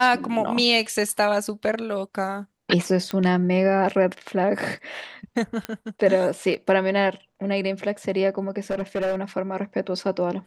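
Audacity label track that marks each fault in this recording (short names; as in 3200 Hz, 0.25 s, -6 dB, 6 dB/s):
3.110000	3.110000	pop -14 dBFS
5.650000	5.650000	pop -13 dBFS
8.700000	9.160000	clipped -20.5 dBFS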